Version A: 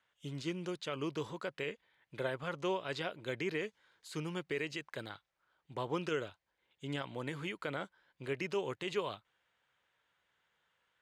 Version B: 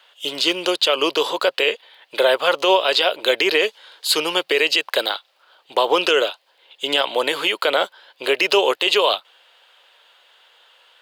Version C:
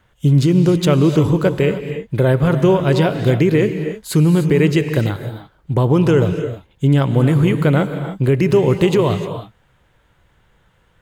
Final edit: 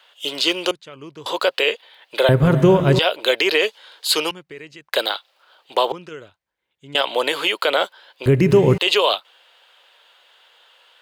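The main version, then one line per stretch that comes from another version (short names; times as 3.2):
B
0.71–1.26 from A
2.29–2.99 from C
4.31–4.93 from A
5.92–6.95 from A
8.26–8.78 from C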